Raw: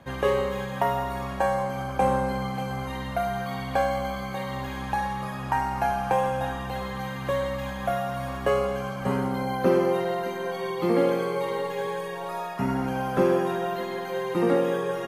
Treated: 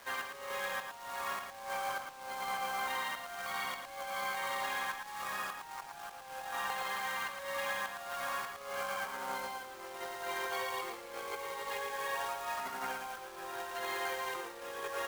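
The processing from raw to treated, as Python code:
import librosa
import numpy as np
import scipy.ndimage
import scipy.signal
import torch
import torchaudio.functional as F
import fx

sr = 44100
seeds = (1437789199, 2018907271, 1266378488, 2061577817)

y = scipy.signal.sosfilt(scipy.signal.butter(2, 1100.0, 'highpass', fs=sr, output='sos'), x)
y = fx.high_shelf(y, sr, hz=3000.0, db=-8.5)
y = fx.over_compress(y, sr, threshold_db=-41.0, ratio=-0.5)
y = fx.quant_companded(y, sr, bits=4)
y = y + 10.0 ** (-6.0 / 20.0) * np.pad(y, (int(112 * sr / 1000.0), 0))[:len(y)]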